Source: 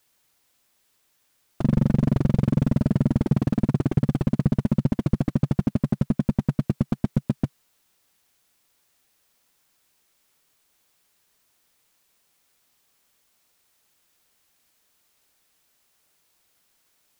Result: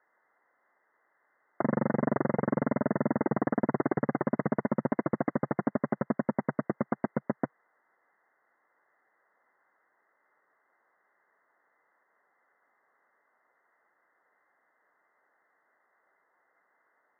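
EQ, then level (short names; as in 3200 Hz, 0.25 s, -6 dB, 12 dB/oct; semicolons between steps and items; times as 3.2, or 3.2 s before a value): HPF 490 Hz 12 dB/oct; brick-wall FIR low-pass 2100 Hz; +6.5 dB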